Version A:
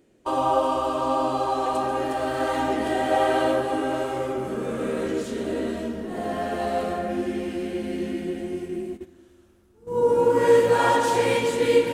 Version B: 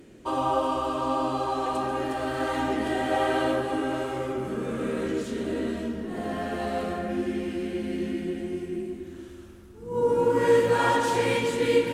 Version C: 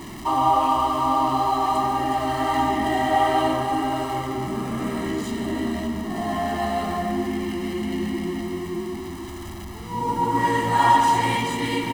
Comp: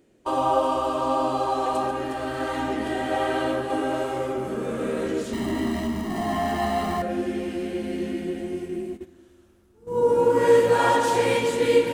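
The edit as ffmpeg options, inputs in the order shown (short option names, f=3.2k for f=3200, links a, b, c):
-filter_complex "[0:a]asplit=3[a][b][c];[a]atrim=end=1.912[d];[1:a]atrim=start=1.908:end=3.702[e];[b]atrim=start=3.698:end=5.332[f];[2:a]atrim=start=5.328:end=7.022[g];[c]atrim=start=7.018[h];[d][e]acrossfade=d=0.004:c1=hsin:c2=hsin[i];[i][f]acrossfade=d=0.004:c1=hsin:c2=hsin[j];[j][g]acrossfade=d=0.004:c1=hsin:c2=hsin[k];[k][h]acrossfade=d=0.004:c1=hsin:c2=hsin"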